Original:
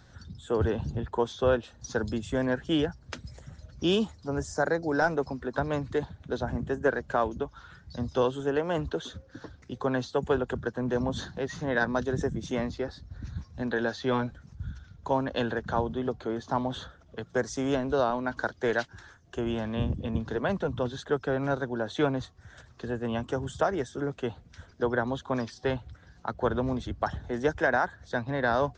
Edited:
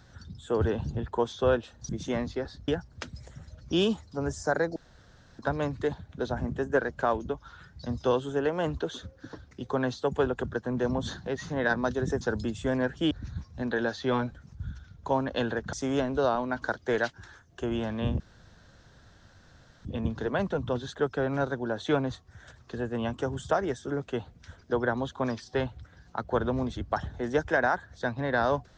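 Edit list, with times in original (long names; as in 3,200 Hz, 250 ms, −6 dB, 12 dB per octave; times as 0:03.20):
0:01.89–0:02.79: swap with 0:12.32–0:13.11
0:04.87–0:05.50: fill with room tone
0:15.73–0:17.48: remove
0:19.95: splice in room tone 1.65 s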